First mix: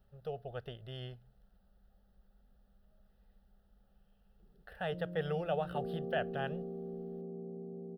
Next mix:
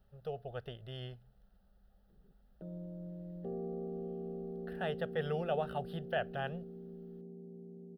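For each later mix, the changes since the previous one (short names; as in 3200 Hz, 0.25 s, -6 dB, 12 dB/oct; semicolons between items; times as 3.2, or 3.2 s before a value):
background: entry -2.30 s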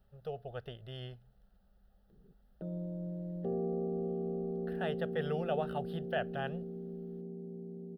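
background +5.5 dB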